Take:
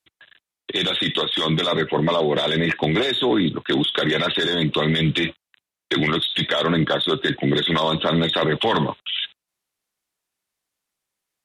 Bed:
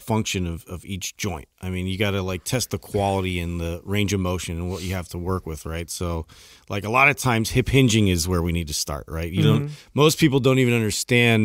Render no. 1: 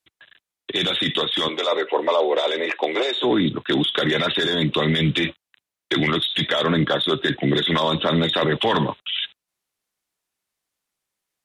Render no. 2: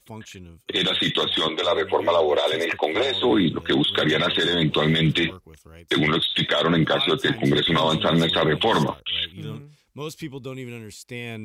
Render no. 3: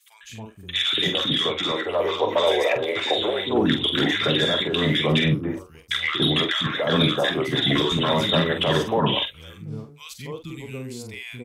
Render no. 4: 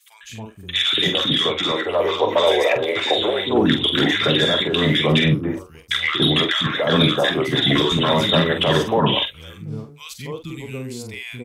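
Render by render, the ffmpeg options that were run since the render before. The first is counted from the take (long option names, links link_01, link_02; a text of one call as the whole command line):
ffmpeg -i in.wav -filter_complex "[0:a]asettb=1/sr,asplit=3[link_01][link_02][link_03];[link_01]atrim=end=1.484[link_04];[link_02]atrim=start=1.48:end=3.24,asetpts=PTS-STARTPTS,afade=type=in:duration=0.004:curve=qsin,afade=type=out:start_time=1.756:duration=0.004:curve=qsin,highpass=frequency=370:width=0.5412,highpass=frequency=370:width=1.3066,equalizer=frequency=530:width_type=q:width=4:gain=4,equalizer=frequency=880:width_type=q:width=4:gain=3,equalizer=frequency=1700:width_type=q:width=4:gain=-5,equalizer=frequency=3300:width_type=q:width=4:gain=-4,lowpass=frequency=8600:width=0.5412,lowpass=frequency=8600:width=1.3066[link_05];[link_03]atrim=start=3.236[link_06];[link_04][link_05]acrossfade=duration=0.004:curve1=hsin:curve2=qsin[link_07];[link_07][link_06]acrossfade=duration=0.004:curve1=qsin:curve2=hsin" out.wav
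ffmpeg -i in.wav -i bed.wav -filter_complex "[1:a]volume=-16.5dB[link_01];[0:a][link_01]amix=inputs=2:normalize=0" out.wav
ffmpeg -i in.wav -filter_complex "[0:a]asplit=2[link_01][link_02];[link_02]adelay=46,volume=-8dB[link_03];[link_01][link_03]amix=inputs=2:normalize=0,acrossover=split=280|1200[link_04][link_05][link_06];[link_04]adelay=230[link_07];[link_05]adelay=280[link_08];[link_07][link_08][link_06]amix=inputs=3:normalize=0" out.wav
ffmpeg -i in.wav -af "volume=3.5dB" out.wav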